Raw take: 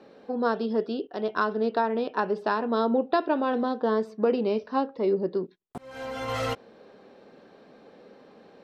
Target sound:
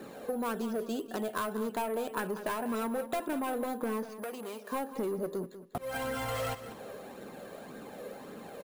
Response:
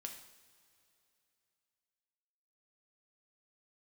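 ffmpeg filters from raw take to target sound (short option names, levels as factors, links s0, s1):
-filter_complex "[0:a]flanger=delay=0.5:depth=1.4:regen=29:speed=1.8:shape=triangular,asplit=2[s0][s1];[s1]aeval=exprs='(mod(11.2*val(0)+1,2)-1)/11.2':c=same,volume=0.376[s2];[s0][s2]amix=inputs=2:normalize=0,acrusher=samples=4:mix=1:aa=0.000001,asoftclip=type=tanh:threshold=0.0562,acompressor=threshold=0.00891:ratio=6,asettb=1/sr,asplit=3[s3][s4][s5];[s3]atrim=end=4.094[s6];[s4]atrim=start=4.09:end=4.72,asetpts=PTS-STARTPTS,afade=t=in:d=0.004:c=qsin,afade=t=out:st=0.626:d=0.004:c=qsin,highpass=f=850:p=1[s7];[s5]atrim=start=4.716[s8];[s6][s7]acrossfade=d=0.004:c1=hsin:c2=qsin[s9];[s9][s8]acrossfade=d=0.004:c1=qsin:c2=hsin,aecho=1:1:193|386|579:0.224|0.0649|0.0188,volume=2.66"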